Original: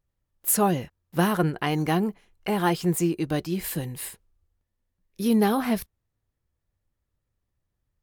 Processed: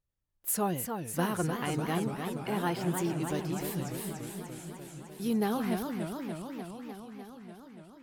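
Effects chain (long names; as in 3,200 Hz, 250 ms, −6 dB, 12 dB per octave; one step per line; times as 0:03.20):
feedback echo with a swinging delay time 295 ms, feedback 75%, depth 214 cents, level −6 dB
level −8.5 dB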